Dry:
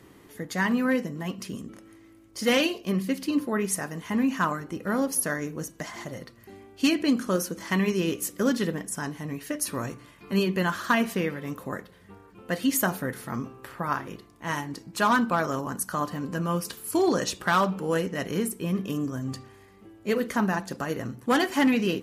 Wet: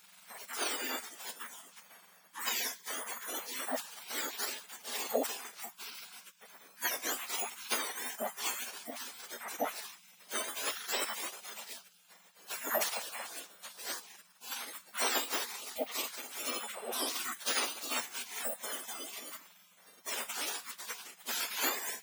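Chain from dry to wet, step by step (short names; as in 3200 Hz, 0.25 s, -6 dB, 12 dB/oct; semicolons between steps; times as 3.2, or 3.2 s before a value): spectrum mirrored in octaves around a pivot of 1900 Hz; spectral gate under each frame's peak -20 dB weak; gain +9 dB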